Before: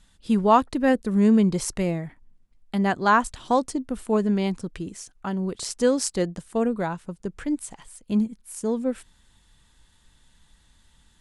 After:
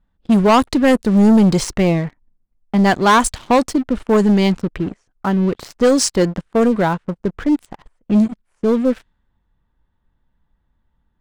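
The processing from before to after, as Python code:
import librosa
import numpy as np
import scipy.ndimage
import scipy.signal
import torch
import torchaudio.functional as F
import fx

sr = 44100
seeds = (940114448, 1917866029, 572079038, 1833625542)

y = fx.env_lowpass(x, sr, base_hz=1100.0, full_db=-15.0)
y = fx.high_shelf(y, sr, hz=4900.0, db=fx.steps((0.0, 8.0), (7.65, 3.0)))
y = fx.leveller(y, sr, passes=3)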